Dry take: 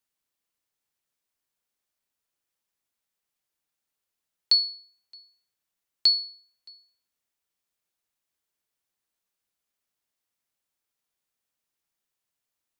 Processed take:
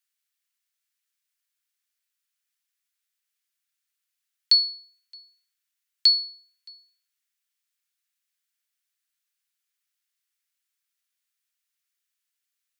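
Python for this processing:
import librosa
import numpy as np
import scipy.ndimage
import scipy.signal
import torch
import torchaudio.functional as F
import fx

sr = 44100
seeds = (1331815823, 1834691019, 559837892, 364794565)

y = scipy.signal.sosfilt(scipy.signal.cheby2(4, 80, 240.0, 'highpass', fs=sr, output='sos'), x)
y = y * librosa.db_to_amplitude(2.5)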